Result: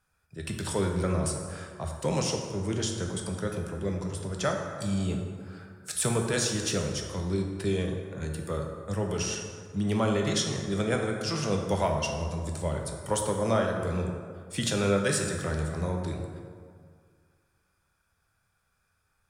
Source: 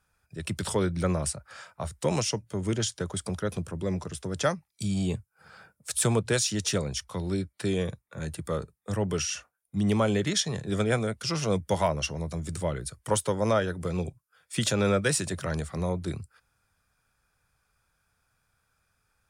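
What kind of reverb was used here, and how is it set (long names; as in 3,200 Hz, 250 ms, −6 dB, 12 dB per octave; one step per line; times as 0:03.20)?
dense smooth reverb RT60 2 s, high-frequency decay 0.5×, DRR 1.5 dB
level −3 dB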